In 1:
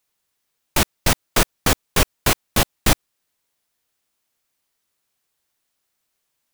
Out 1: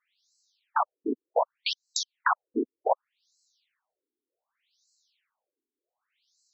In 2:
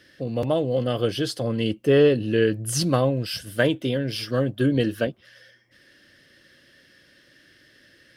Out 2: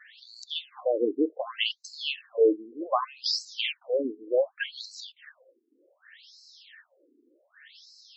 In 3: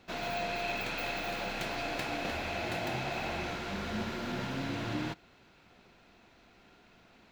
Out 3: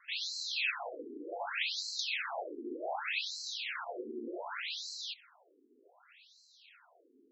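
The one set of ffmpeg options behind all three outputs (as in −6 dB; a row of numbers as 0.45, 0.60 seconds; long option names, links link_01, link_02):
-filter_complex "[0:a]highshelf=frequency=2200:gain=10,acrossover=split=1900[link_01][link_02];[link_02]acompressor=threshold=-26dB:ratio=6[link_03];[link_01][link_03]amix=inputs=2:normalize=0,afftfilt=real='re*between(b*sr/1024,310*pow(5700/310,0.5+0.5*sin(2*PI*0.66*pts/sr))/1.41,310*pow(5700/310,0.5+0.5*sin(2*PI*0.66*pts/sr))*1.41)':imag='im*between(b*sr/1024,310*pow(5700/310,0.5+0.5*sin(2*PI*0.66*pts/sr))/1.41,310*pow(5700/310,0.5+0.5*sin(2*PI*0.66*pts/sr))*1.41)':win_size=1024:overlap=0.75,volume=2dB"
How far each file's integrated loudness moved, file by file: −9.0, −5.5, −2.0 LU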